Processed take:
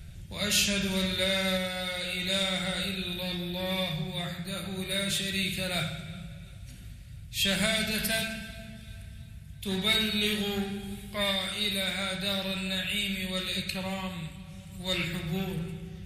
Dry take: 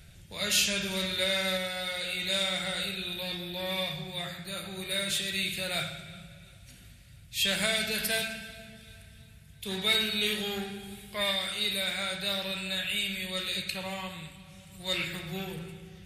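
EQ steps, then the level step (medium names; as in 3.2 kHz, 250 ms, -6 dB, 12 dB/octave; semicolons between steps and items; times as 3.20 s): bass shelf 240 Hz +10 dB; band-stop 450 Hz, Q 12; 0.0 dB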